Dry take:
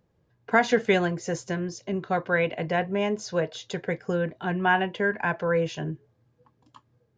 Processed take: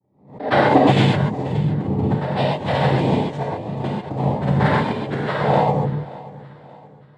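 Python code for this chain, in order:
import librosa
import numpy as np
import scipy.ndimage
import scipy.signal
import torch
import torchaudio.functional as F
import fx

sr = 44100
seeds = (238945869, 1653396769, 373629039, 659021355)

y = fx.wiener(x, sr, points=41)
y = fx.low_shelf(y, sr, hz=360.0, db=5.0)
y = y + 0.75 * np.pad(y, (int(4.4 * sr / 1000.0), 0))[:len(y)]
y = fx.vibrato(y, sr, rate_hz=1.1, depth_cents=39.0)
y = fx.noise_vocoder(y, sr, seeds[0], bands=6)
y = fx.granulator(y, sr, seeds[1], grain_ms=100.0, per_s=20.0, spray_ms=100.0, spread_st=0)
y = fx.echo_feedback(y, sr, ms=578, feedback_pct=42, wet_db=-19.0)
y = fx.rev_gated(y, sr, seeds[2], gate_ms=160, shape='flat', drr_db=-4.5)
y = fx.pre_swell(y, sr, db_per_s=120.0)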